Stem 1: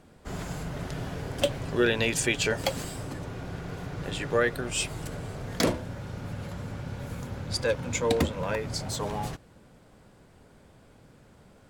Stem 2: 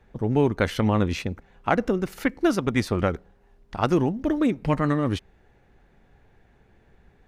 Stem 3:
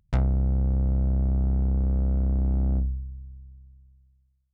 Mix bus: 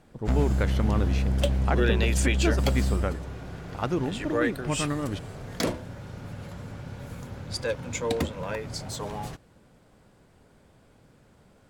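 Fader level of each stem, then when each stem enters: -2.5 dB, -6.5 dB, -1.5 dB; 0.00 s, 0.00 s, 0.15 s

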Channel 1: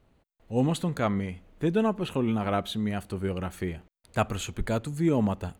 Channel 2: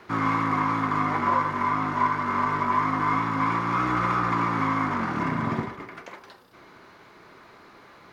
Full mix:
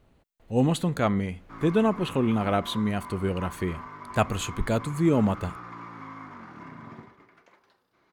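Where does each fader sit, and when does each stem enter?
+2.5 dB, -17.0 dB; 0.00 s, 1.40 s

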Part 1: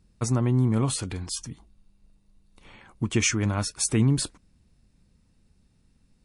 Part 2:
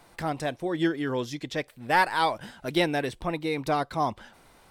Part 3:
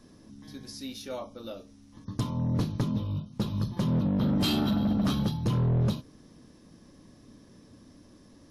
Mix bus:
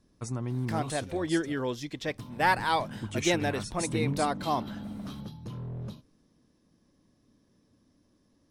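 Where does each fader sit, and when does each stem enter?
-10.0 dB, -2.5 dB, -13.0 dB; 0.00 s, 0.50 s, 0.00 s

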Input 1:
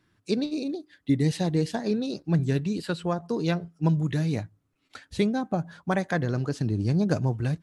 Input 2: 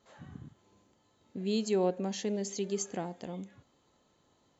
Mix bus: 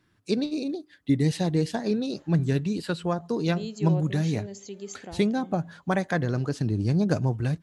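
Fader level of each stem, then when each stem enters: +0.5 dB, -5.0 dB; 0.00 s, 2.10 s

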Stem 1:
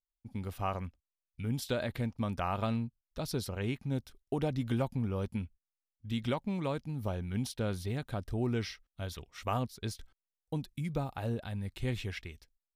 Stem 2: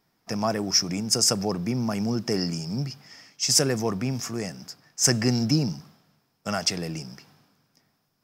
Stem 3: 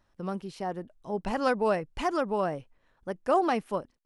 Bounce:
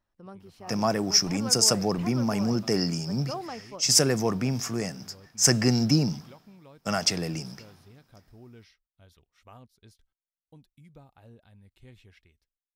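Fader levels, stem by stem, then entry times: -17.5 dB, +0.5 dB, -11.5 dB; 0.00 s, 0.40 s, 0.00 s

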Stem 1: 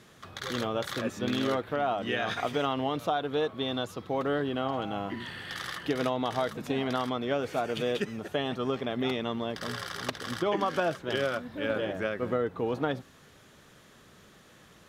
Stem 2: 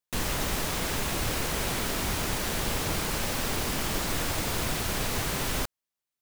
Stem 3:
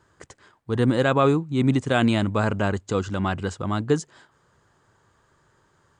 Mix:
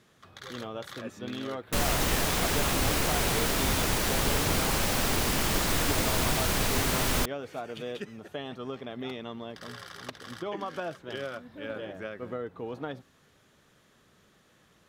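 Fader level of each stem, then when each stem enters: -7.0 dB, +2.5 dB, mute; 0.00 s, 1.60 s, mute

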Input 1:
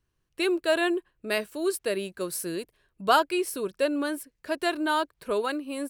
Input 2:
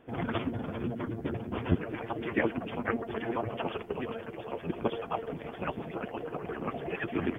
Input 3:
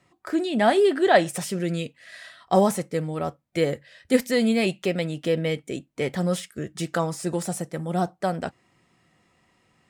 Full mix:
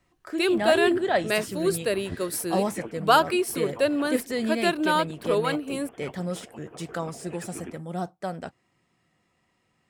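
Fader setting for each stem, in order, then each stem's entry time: +2.5 dB, -9.0 dB, -6.5 dB; 0.00 s, 0.40 s, 0.00 s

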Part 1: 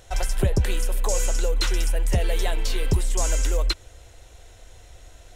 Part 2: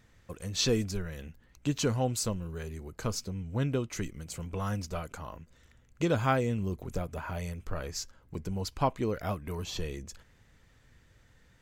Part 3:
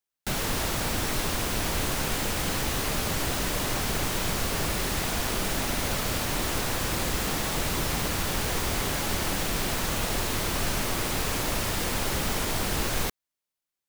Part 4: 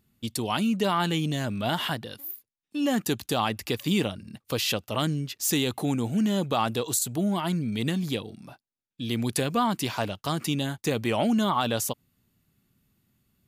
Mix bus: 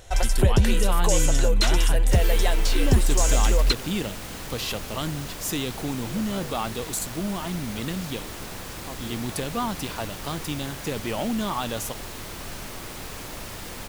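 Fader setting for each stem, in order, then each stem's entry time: +2.5 dB, -13.5 dB, -8.5 dB, -3.5 dB; 0.00 s, 0.05 s, 1.85 s, 0.00 s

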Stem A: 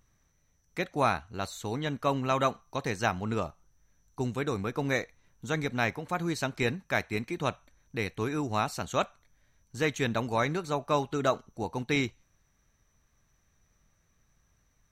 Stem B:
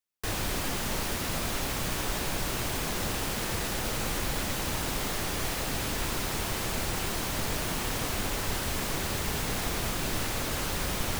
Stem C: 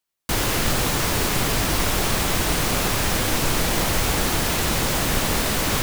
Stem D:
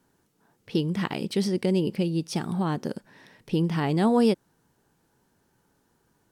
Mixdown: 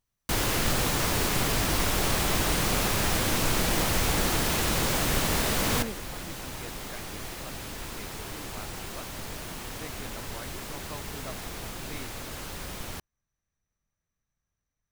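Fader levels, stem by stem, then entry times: -16.5 dB, -7.0 dB, -4.5 dB, -17.0 dB; 0.00 s, 1.80 s, 0.00 s, 1.60 s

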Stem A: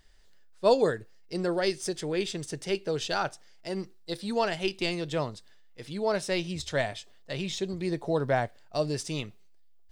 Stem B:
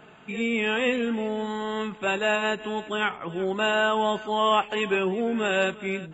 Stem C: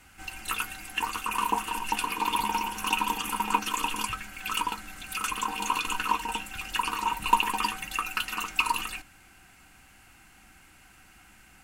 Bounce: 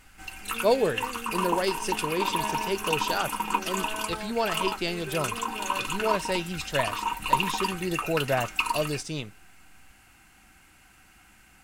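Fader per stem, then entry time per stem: 0.0 dB, -15.5 dB, -1.0 dB; 0.00 s, 0.15 s, 0.00 s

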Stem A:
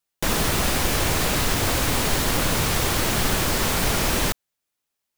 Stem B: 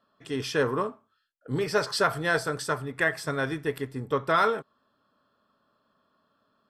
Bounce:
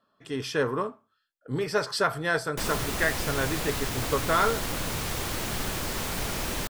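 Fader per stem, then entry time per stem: -9.0 dB, -1.0 dB; 2.35 s, 0.00 s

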